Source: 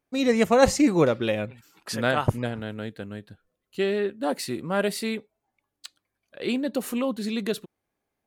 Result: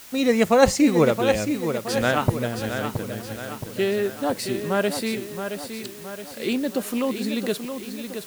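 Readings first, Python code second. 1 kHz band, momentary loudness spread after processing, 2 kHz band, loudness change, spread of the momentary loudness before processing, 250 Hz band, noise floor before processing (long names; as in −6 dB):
+2.5 dB, 15 LU, +3.0 dB, +1.5 dB, 16 LU, +2.5 dB, −83 dBFS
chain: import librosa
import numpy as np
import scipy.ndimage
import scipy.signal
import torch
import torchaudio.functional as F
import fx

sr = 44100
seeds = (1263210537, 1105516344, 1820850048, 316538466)

p1 = fx.echo_feedback(x, sr, ms=671, feedback_pct=51, wet_db=-8.0)
p2 = fx.quant_dither(p1, sr, seeds[0], bits=6, dither='triangular')
p3 = p1 + (p2 * librosa.db_to_amplitude(-6.5))
y = p3 * librosa.db_to_amplitude(-1.5)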